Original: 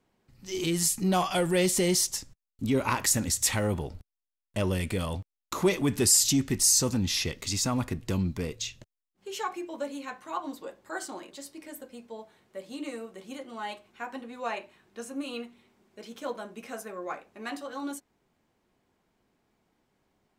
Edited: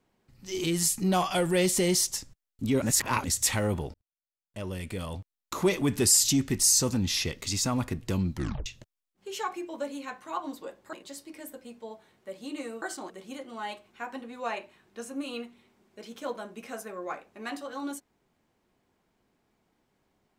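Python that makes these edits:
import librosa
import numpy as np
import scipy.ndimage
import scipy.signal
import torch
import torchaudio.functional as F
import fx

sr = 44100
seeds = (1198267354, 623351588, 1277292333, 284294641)

y = fx.edit(x, sr, fx.reverse_span(start_s=2.82, length_s=0.42),
    fx.fade_in_span(start_s=3.94, length_s=1.83),
    fx.tape_stop(start_s=8.34, length_s=0.32),
    fx.move(start_s=10.93, length_s=0.28, to_s=13.1), tone=tone)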